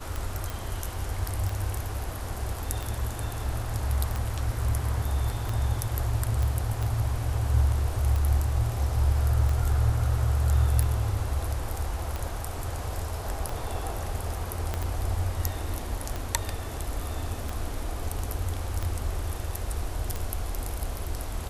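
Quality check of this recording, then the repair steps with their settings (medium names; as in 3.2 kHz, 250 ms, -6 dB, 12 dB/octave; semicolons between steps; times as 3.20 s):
tick 45 rpm
0.50 s: pop
6.43 s: pop
14.74 s: pop -15 dBFS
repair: de-click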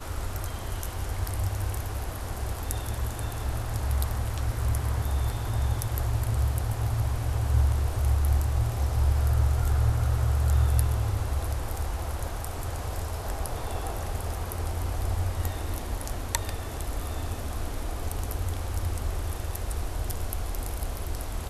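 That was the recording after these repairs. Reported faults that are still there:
14.74 s: pop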